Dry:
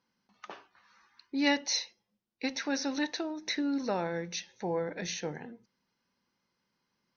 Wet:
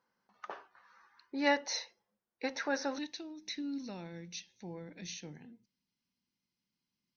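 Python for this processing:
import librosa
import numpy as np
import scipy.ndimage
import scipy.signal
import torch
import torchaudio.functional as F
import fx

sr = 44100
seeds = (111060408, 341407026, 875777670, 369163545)

y = fx.band_shelf(x, sr, hz=850.0, db=fx.steps((0.0, 8.5), (2.97, -10.5)), octaves=2.5)
y = y * 10.0 ** (-6.5 / 20.0)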